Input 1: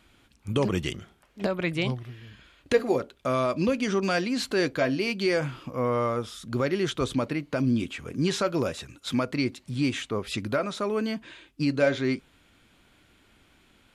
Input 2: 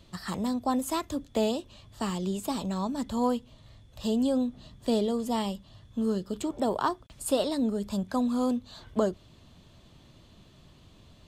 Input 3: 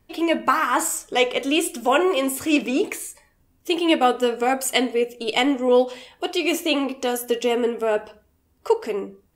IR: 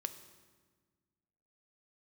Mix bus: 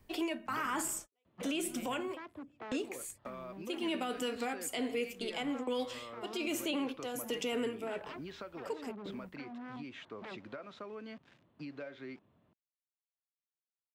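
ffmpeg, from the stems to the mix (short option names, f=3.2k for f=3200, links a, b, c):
-filter_complex "[0:a]lowshelf=f=280:g=-6.5,aeval=exprs='val(0)*gte(abs(val(0)),0.00794)':c=same,volume=-11.5dB,asplit=2[a][b];[1:a]lowpass=1.8k,aeval=exprs='0.0447*(abs(mod(val(0)/0.0447+3,4)-2)-1)':c=same,adelay=1250,volume=-11dB[c];[2:a]tremolo=f=1.2:d=0.8,volume=-2.5dB[d];[b]apad=whole_len=412479[e];[d][e]sidechaingate=range=-52dB:threshold=-58dB:ratio=16:detection=peak[f];[a][c]amix=inputs=2:normalize=0,highpass=140,lowpass=3.1k,acompressor=threshold=-41dB:ratio=12,volume=0dB[g];[f][g]amix=inputs=2:normalize=0,acrossover=split=310|1300[h][i][j];[h]acompressor=threshold=-36dB:ratio=4[k];[i]acompressor=threshold=-38dB:ratio=4[l];[j]acompressor=threshold=-35dB:ratio=4[m];[k][l][m]amix=inputs=3:normalize=0,alimiter=level_in=3dB:limit=-24dB:level=0:latency=1:release=11,volume=-3dB"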